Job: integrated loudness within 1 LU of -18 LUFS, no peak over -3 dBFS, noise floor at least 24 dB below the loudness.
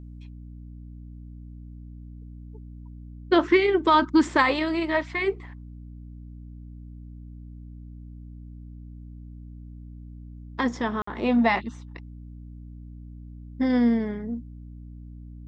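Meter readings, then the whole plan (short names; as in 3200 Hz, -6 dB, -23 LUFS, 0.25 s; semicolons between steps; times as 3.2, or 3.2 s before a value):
dropouts 1; longest dropout 54 ms; hum 60 Hz; harmonics up to 300 Hz; hum level -39 dBFS; loudness -23.5 LUFS; peak -7.0 dBFS; loudness target -18.0 LUFS
-> interpolate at 11.02, 54 ms; notches 60/120/180/240/300 Hz; gain +5.5 dB; limiter -3 dBFS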